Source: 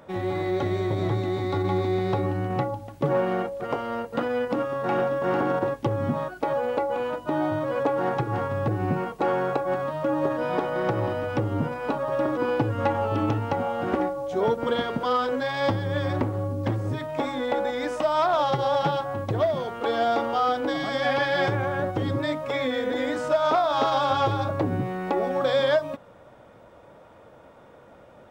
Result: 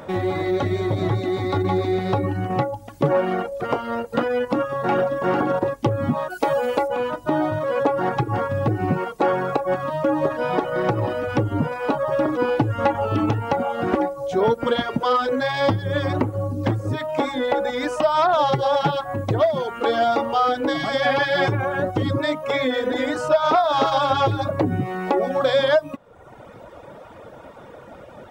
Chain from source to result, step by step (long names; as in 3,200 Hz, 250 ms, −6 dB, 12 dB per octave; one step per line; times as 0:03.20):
reverb reduction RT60 0.91 s
in parallel at +2 dB: downward compressor, threshold −40 dBFS, peak gain reduction 20.5 dB
0:06.30–0:06.88: on the sum: high-shelf EQ 3,800 Hz +11 dB
level +4 dB